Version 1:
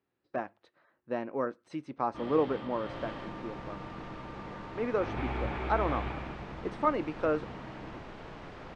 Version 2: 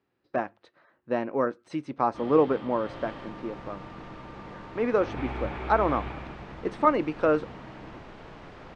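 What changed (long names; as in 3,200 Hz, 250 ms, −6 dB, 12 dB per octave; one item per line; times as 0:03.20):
speech +7.0 dB
reverb: off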